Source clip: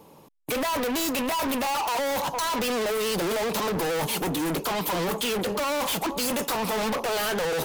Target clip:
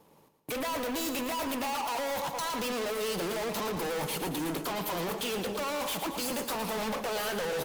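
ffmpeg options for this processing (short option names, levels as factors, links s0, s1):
-af "aeval=exprs='sgn(val(0))*max(abs(val(0))-0.00106,0)':c=same,aecho=1:1:113|226|339|452|565|678:0.355|0.195|0.107|0.059|0.0325|0.0179,volume=0.473"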